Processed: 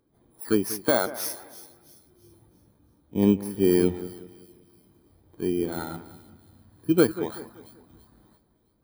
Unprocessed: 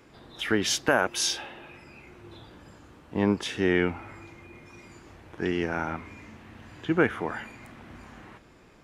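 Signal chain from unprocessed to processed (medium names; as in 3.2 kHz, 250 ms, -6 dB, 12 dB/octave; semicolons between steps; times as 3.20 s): bit-reversed sample order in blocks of 16 samples; two-band feedback delay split 2.8 kHz, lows 190 ms, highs 334 ms, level -10.5 dB; spectral contrast expander 1.5:1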